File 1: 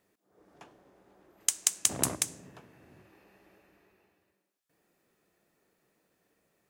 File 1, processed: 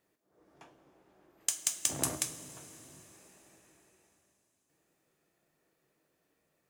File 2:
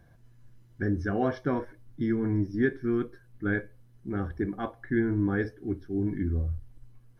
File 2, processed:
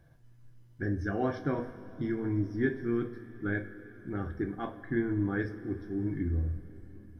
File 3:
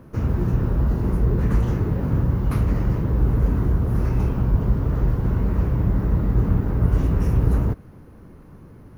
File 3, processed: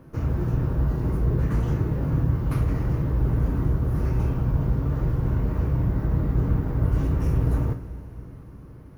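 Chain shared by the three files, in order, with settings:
hard clipper -10 dBFS; two-slope reverb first 0.28 s, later 4.2 s, from -18 dB, DRR 5 dB; trim -4 dB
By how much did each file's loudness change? -4.0 LU, -3.5 LU, -3.0 LU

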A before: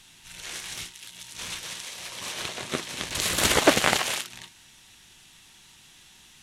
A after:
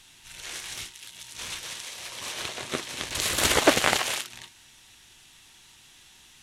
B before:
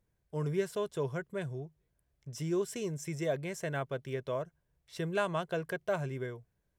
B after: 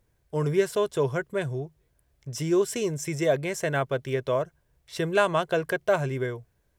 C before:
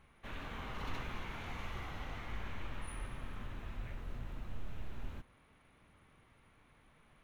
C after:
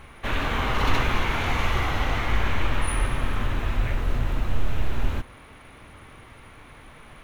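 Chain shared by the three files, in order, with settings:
peaking EQ 180 Hz -6 dB 0.53 oct; normalise loudness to -27 LUFS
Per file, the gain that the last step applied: -0.5 dB, +9.5 dB, +19.5 dB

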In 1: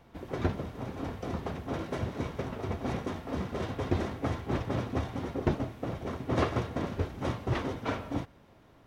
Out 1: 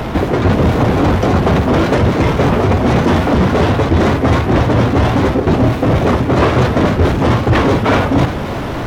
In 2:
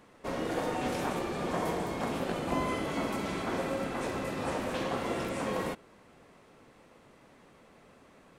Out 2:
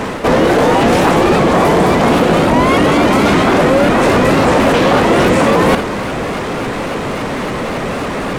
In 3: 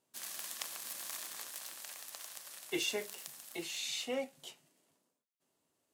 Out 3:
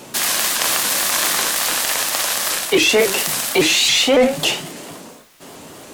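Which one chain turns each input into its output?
reverse; compression 6:1, threshold -42 dBFS; reverse; flutter echo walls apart 9.8 m, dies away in 0.24 s; power-law waveshaper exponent 0.7; treble shelf 5.3 kHz -6.5 dB; in parallel at -1 dB: peak limiter -36.5 dBFS; on the sum: vibrato with a chosen wave saw up 3.6 Hz, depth 160 cents; peak normalisation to -2 dBFS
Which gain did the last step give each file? +25.0 dB, +26.5 dB, +22.0 dB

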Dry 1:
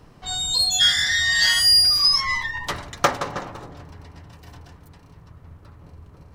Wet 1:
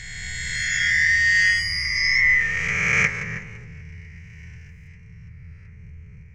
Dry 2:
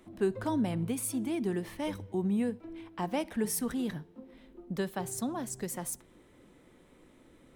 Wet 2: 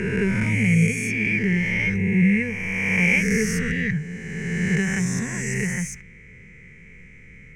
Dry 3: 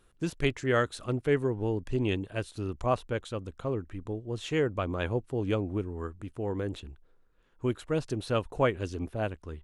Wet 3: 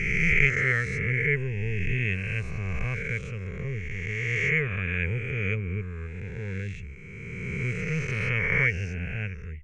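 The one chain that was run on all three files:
reverse spectral sustain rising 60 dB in 2.46 s; FFT filter 180 Hz 0 dB, 310 Hz -25 dB, 440 Hz -9 dB, 630 Hz -28 dB, 1.2 kHz -20 dB, 2.2 kHz +11 dB, 3.7 kHz -25 dB, 6.2 kHz -6 dB, 11 kHz -28 dB; peak normalisation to -6 dBFS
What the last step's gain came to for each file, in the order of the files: 0.0 dB, +14.0 dB, +3.5 dB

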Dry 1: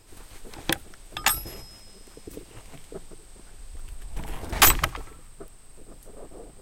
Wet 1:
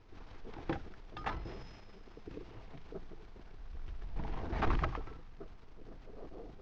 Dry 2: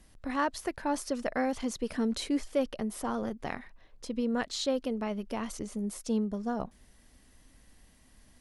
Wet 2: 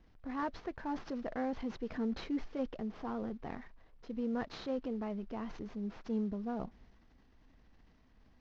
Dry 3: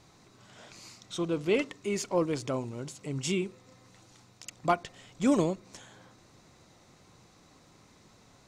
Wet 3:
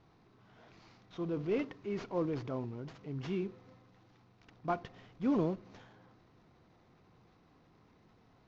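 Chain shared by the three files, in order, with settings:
CVSD coder 32 kbps; low-pass 3.4 kHz 6 dB/octave; treble shelf 2.2 kHz -11 dB; transient shaper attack -2 dB, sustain +5 dB; band-stop 570 Hz, Q 12; trim -4.5 dB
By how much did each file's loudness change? -20.0 LU, -6.5 LU, -6.0 LU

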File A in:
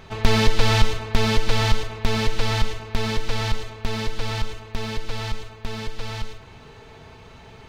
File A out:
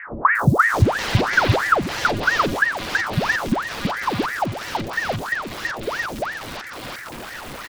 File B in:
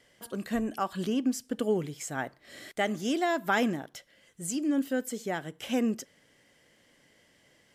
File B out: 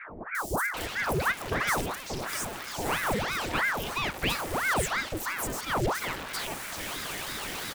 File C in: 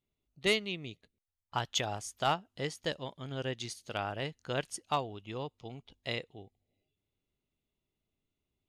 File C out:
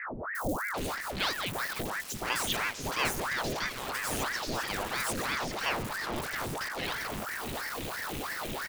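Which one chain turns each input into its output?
jump at every zero crossing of -26 dBFS; three bands offset in time lows, highs, mids 350/740 ms, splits 580/5500 Hz; ring modulator with a swept carrier 990 Hz, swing 90%, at 3 Hz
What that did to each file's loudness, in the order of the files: +4.5 LU, +1.0 LU, +3.0 LU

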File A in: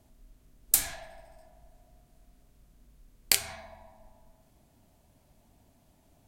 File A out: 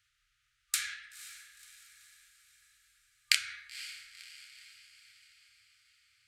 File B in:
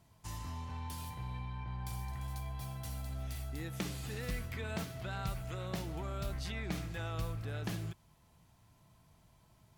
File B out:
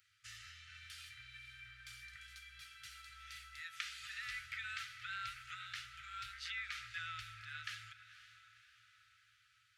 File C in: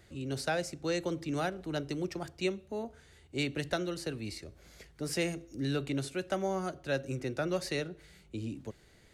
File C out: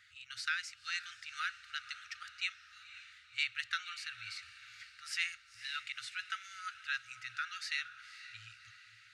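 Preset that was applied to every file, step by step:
low-pass 2.2 kHz 12 dB/octave; FFT band-reject 120–1200 Hz; differentiator; echo that smears into a reverb 513 ms, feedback 52%, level -14 dB; trim +16.5 dB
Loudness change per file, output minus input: -7.0 LU, -6.0 LU, -4.5 LU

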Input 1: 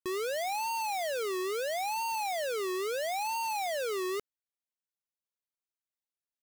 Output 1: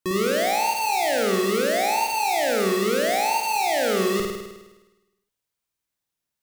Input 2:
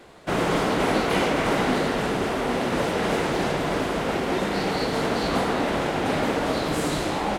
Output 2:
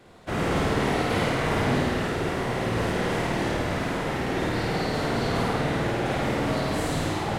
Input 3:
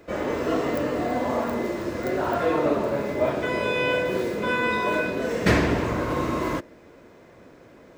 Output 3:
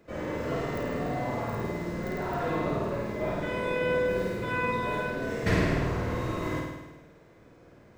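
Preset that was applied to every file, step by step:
octave divider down 1 oct, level +1 dB; dynamic bell 1.9 kHz, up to +3 dB, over -43 dBFS, Q 4.4; flutter echo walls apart 8.9 m, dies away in 1.1 s; peak normalisation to -12 dBFS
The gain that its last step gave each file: +7.5 dB, -6.0 dB, -10.0 dB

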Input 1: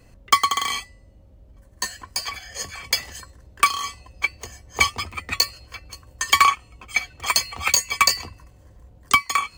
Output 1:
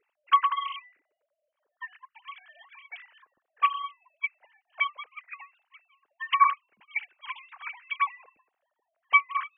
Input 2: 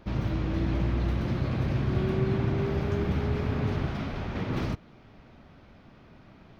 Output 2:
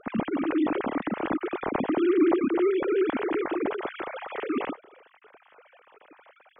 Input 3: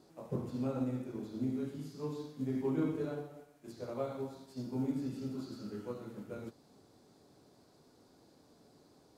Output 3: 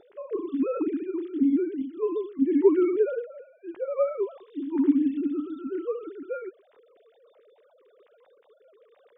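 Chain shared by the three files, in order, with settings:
formants replaced by sine waves; normalise loudness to -27 LUFS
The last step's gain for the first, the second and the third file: -6.5 dB, +1.0 dB, +12.0 dB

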